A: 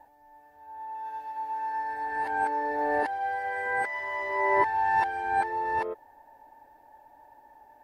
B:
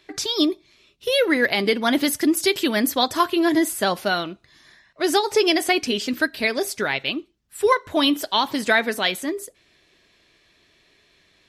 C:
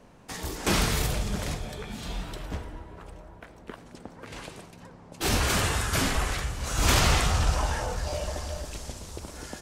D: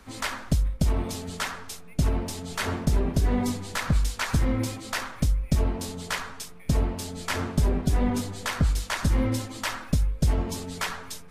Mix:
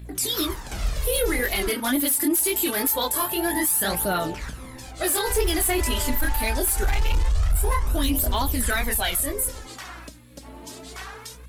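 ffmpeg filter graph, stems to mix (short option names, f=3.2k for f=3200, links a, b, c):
-filter_complex "[0:a]adelay=1550,volume=-5.5dB[a];[1:a]aeval=exprs='val(0)+0.00891*(sin(2*PI*60*n/s)+sin(2*PI*2*60*n/s)/2+sin(2*PI*3*60*n/s)/3+sin(2*PI*4*60*n/s)/4+sin(2*PI*5*60*n/s)/5)':c=same,flanger=delay=17.5:depth=7.9:speed=2,aexciter=amount=9.5:drive=7.2:freq=8.1k,volume=-1dB,asplit=2[b][c];[2:a]asubboost=boost=8:cutoff=62,acrossover=split=130[d][e];[e]acompressor=threshold=-33dB:ratio=2[f];[d][f]amix=inputs=2:normalize=0,adelay=50,volume=-6dB,asplit=3[g][h][i];[g]atrim=end=1.69,asetpts=PTS-STARTPTS,afade=t=out:st=1.686:d=0.004:c=hsin[j];[h]atrim=start=1.69:end=3.87,asetpts=PTS-STARTPTS,volume=0[k];[i]atrim=start=3.87,asetpts=PTS-STARTPTS,afade=t=in:d=0.004:c=hsin[l];[j][k][l]concat=n=3:v=0:a=1[m];[3:a]acompressor=threshold=-33dB:ratio=6,adelay=150,volume=1dB[n];[c]apad=whole_len=413745[o];[a][o]sidechaingate=range=-33dB:threshold=-39dB:ratio=16:detection=peak[p];[p][n]amix=inputs=2:normalize=0,highpass=320,alimiter=level_in=3dB:limit=-24dB:level=0:latency=1:release=55,volume=-3dB,volume=0dB[q];[b][m][q]amix=inputs=3:normalize=0,volume=15dB,asoftclip=hard,volume=-15dB,aphaser=in_gain=1:out_gain=1:delay=3.7:decay=0.54:speed=0.24:type=triangular,alimiter=limit=-15dB:level=0:latency=1:release=25"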